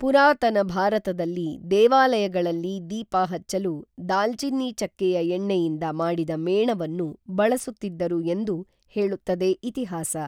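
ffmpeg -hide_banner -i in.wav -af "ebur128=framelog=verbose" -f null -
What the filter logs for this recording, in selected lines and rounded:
Integrated loudness:
  I:         -24.2 LUFS
  Threshold: -34.2 LUFS
Loudness range:
  LRA:         3.6 LU
  Threshold: -44.7 LUFS
  LRA low:   -26.3 LUFS
  LRA high:  -22.7 LUFS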